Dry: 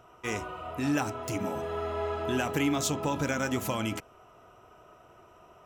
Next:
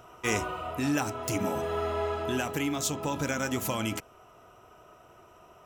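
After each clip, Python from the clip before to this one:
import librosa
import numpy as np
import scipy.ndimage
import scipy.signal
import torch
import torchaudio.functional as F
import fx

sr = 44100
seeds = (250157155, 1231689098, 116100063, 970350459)

y = fx.high_shelf(x, sr, hz=4800.0, db=5.5)
y = fx.rider(y, sr, range_db=10, speed_s=0.5)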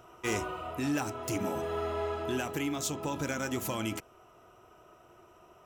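y = fx.peak_eq(x, sr, hz=350.0, db=6.0, octaves=0.22)
y = np.clip(y, -10.0 ** (-21.0 / 20.0), 10.0 ** (-21.0 / 20.0))
y = y * librosa.db_to_amplitude(-3.5)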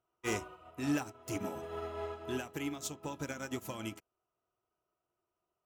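y = fx.upward_expand(x, sr, threshold_db=-48.0, expansion=2.5)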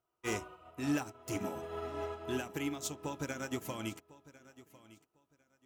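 y = fx.rider(x, sr, range_db=10, speed_s=2.0)
y = fx.echo_feedback(y, sr, ms=1051, feedback_pct=21, wet_db=-19)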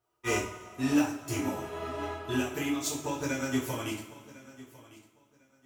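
y = fx.rev_double_slope(x, sr, seeds[0], early_s=0.38, late_s=2.0, knee_db=-18, drr_db=-6.0)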